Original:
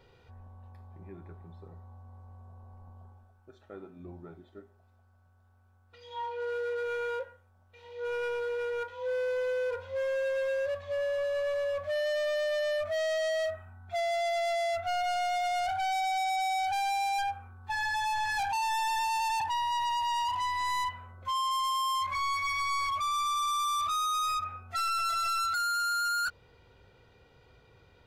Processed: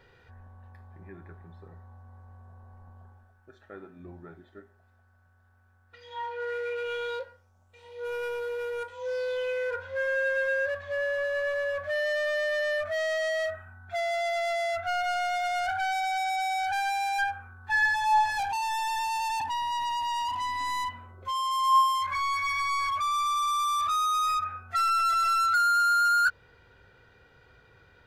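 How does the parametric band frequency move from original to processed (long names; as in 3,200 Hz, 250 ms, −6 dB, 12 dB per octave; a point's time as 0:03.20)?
parametric band +12.5 dB 0.47 octaves
0:06.42 1,700 Hz
0:08.11 12,000 Hz
0:08.71 12,000 Hz
0:09.74 1,600 Hz
0:17.88 1,600 Hz
0:18.72 260 Hz
0:20.98 260 Hz
0:22.00 1,600 Hz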